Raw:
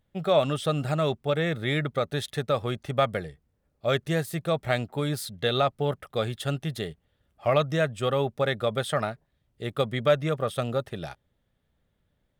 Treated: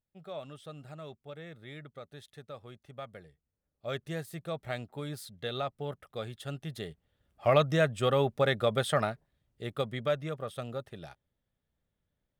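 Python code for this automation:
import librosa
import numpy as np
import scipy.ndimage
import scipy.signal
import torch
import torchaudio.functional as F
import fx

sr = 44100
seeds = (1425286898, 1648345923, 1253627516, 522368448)

y = fx.gain(x, sr, db=fx.line((3.06, -19.5), (3.97, -10.5), (6.45, -10.5), (7.5, -1.0), (8.98, -1.0), (10.38, -10.0)))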